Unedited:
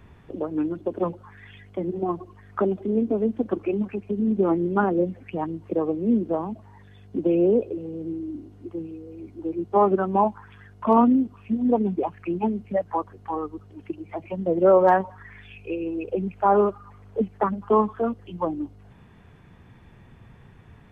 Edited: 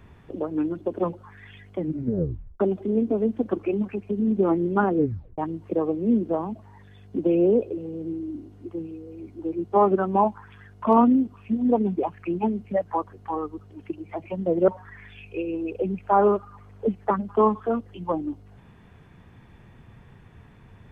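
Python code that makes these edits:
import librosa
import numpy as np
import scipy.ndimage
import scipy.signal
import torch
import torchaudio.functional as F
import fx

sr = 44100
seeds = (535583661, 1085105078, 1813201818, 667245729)

y = fx.edit(x, sr, fx.tape_stop(start_s=1.79, length_s=0.81),
    fx.tape_stop(start_s=4.96, length_s=0.42),
    fx.cut(start_s=14.68, length_s=0.33), tone=tone)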